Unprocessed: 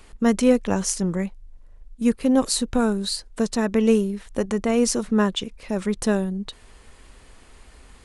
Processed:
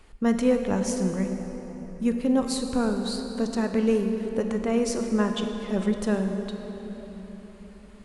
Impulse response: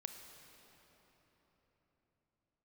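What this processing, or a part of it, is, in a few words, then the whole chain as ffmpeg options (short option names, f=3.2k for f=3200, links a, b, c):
swimming-pool hall: -filter_complex "[0:a]asettb=1/sr,asplit=3[a][b][c];[a]atrim=end=5.374[d];[b]atrim=start=5.37:end=5.92,asetpts=PTS-STARTPTS,afade=t=in:d=0.004:c=qsin,afade=t=out:st=0.546:d=0.004:c=qsin,aecho=1:1:5.3:0.76,atrim=end_sample=24255[e];[c]atrim=start=5.916[f];[d][e]acrossfade=d=0.004:c1=hsin:c2=qsin[g];[g][f]acrossfade=d=0.004:c1=qsin:c2=hsin[h];[1:a]atrim=start_sample=2205[i];[h][i]afir=irnorm=-1:irlink=0,highshelf=f=4.4k:g=-6.5"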